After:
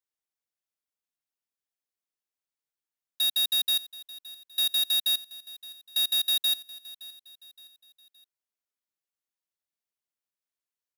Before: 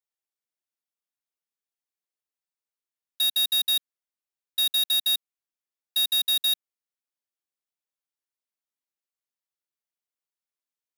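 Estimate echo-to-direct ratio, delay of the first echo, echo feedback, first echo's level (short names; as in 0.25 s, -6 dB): -17.5 dB, 0.568 s, 42%, -18.5 dB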